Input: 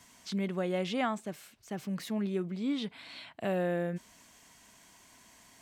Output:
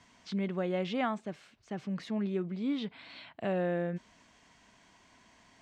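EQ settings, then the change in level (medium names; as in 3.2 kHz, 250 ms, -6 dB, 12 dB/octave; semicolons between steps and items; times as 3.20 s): distance through air 110 m; treble shelf 9.7 kHz -4 dB; 0.0 dB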